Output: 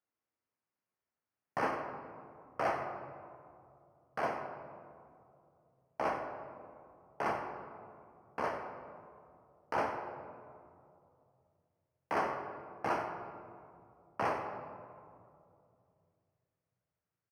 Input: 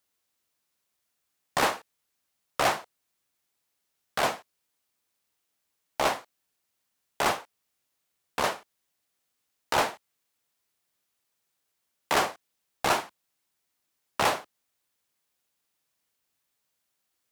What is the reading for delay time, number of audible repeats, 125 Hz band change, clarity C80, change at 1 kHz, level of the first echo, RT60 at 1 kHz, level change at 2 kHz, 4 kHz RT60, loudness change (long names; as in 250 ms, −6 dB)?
92 ms, 1, −5.5 dB, 6.0 dB, −6.5 dB, −12.0 dB, 2.3 s, −10.0 dB, 1.1 s, −10.0 dB